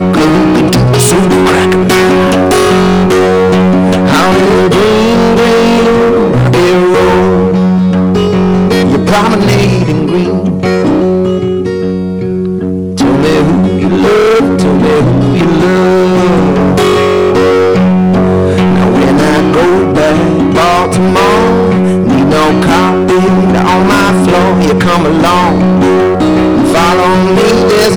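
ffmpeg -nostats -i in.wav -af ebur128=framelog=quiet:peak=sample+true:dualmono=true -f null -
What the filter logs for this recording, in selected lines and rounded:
Integrated loudness:
  I:          -4.7 LUFS
  Threshold: -14.7 LUFS
Loudness range:
  LRA:         2.7 LU
  Threshold: -24.8 LUFS
  LRA low:    -6.6 LUFS
  LRA high:   -3.9 LUFS
Sample peak:
  Peak:       -4.9 dBFS
True peak:
  Peak:       -1.1 dBFS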